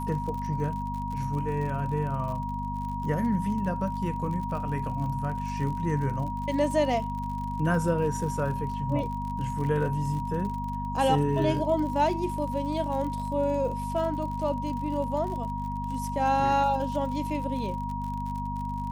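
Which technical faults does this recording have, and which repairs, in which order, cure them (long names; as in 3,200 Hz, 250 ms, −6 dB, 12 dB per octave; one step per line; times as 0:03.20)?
surface crackle 53 per second −35 dBFS
mains hum 50 Hz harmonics 5 −34 dBFS
whistle 950 Hz −33 dBFS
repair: click removal
hum removal 50 Hz, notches 5
notch filter 950 Hz, Q 30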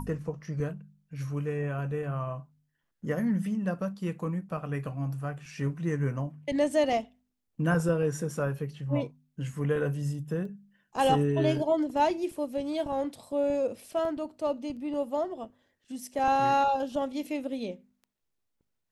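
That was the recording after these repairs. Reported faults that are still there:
none of them is left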